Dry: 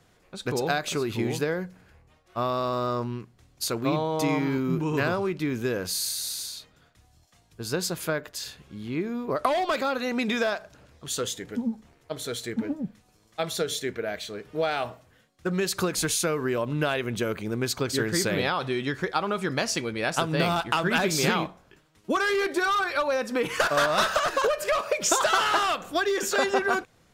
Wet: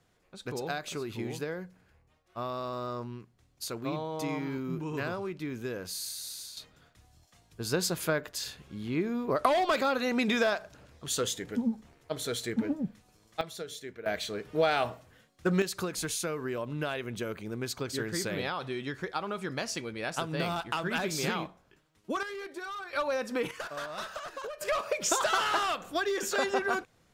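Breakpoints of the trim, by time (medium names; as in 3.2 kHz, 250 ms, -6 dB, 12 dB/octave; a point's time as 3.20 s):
-8.5 dB
from 6.57 s -1 dB
from 13.41 s -12 dB
from 14.06 s +0.5 dB
from 15.62 s -7.5 dB
from 22.23 s -15 dB
from 22.93 s -5 dB
from 23.51 s -15.5 dB
from 24.61 s -5 dB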